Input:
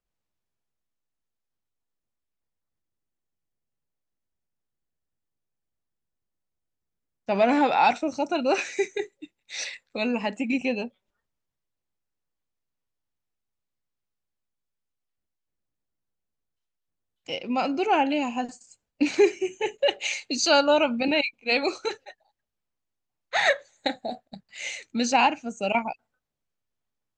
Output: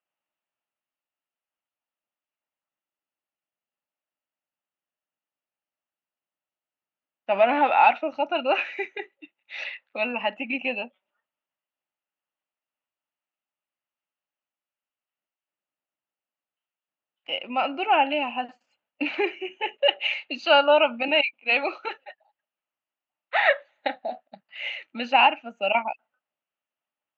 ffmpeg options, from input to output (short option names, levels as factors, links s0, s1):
-af "highpass=300,equalizer=f=430:t=q:w=4:g=-7,equalizer=f=610:t=q:w=4:g=6,equalizer=f=860:t=q:w=4:g=5,equalizer=f=1300:t=q:w=4:g=6,equalizer=f=1900:t=q:w=4:g=3,equalizer=f=2800:t=q:w=4:g=10,lowpass=f=3200:w=0.5412,lowpass=f=3200:w=1.3066,volume=0.75"